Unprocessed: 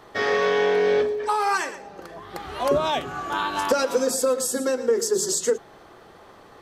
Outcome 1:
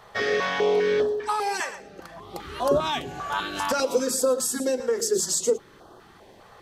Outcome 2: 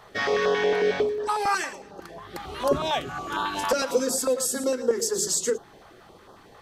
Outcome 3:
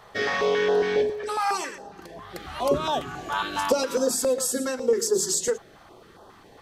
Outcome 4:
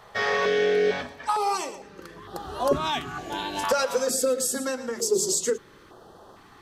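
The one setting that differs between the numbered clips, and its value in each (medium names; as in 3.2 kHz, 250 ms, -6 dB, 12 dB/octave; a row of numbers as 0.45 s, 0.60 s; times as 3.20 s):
step-sequenced notch, rate: 5 Hz, 11 Hz, 7.3 Hz, 2.2 Hz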